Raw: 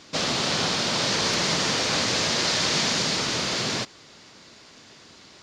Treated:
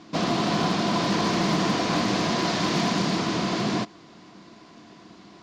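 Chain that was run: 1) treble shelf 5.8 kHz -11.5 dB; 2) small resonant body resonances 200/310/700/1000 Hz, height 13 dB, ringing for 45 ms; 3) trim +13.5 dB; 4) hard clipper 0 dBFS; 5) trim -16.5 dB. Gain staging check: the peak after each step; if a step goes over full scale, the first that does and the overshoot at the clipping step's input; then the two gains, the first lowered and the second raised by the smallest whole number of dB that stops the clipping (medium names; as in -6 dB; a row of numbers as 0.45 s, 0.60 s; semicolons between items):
-13.0 dBFS, -8.5 dBFS, +5.0 dBFS, 0.0 dBFS, -16.5 dBFS; step 3, 5.0 dB; step 3 +8.5 dB, step 5 -11.5 dB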